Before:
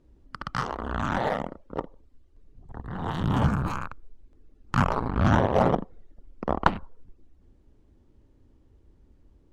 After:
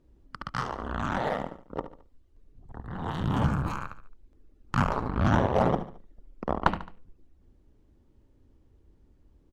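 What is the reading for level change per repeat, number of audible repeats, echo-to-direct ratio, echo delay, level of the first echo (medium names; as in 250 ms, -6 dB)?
-7.5 dB, 3, -12.0 dB, 72 ms, -13.0 dB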